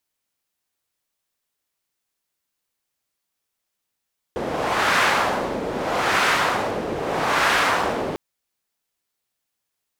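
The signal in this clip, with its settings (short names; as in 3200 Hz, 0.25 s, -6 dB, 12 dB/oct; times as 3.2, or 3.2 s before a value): wind-like swept noise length 3.80 s, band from 430 Hz, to 1500 Hz, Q 1.1, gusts 3, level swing 8.5 dB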